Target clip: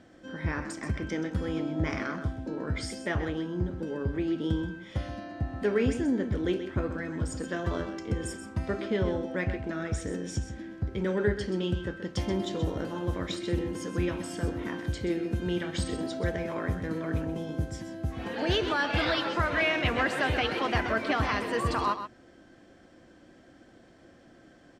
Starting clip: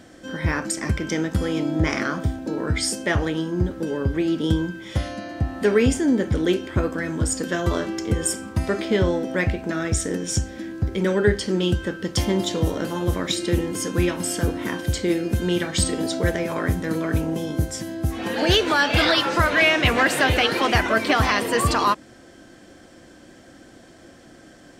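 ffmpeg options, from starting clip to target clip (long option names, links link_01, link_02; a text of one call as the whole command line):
ffmpeg -i in.wav -filter_complex "[0:a]aemphasis=mode=reproduction:type=50fm,asplit=2[link_01][link_02];[link_02]aecho=0:1:129:0.316[link_03];[link_01][link_03]amix=inputs=2:normalize=0,volume=-8.5dB" out.wav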